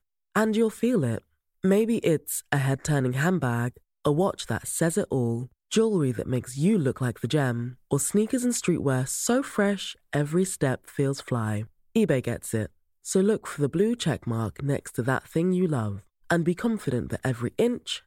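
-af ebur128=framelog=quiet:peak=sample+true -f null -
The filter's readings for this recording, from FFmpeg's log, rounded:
Integrated loudness:
  I:         -26.3 LUFS
  Threshold: -36.4 LUFS
Loudness range:
  LRA:         1.9 LU
  Threshold: -46.4 LUFS
  LRA low:   -27.5 LUFS
  LRA high:  -25.5 LUFS
Sample peak:
  Peak:      -10.7 dBFS
True peak:
  Peak:      -10.7 dBFS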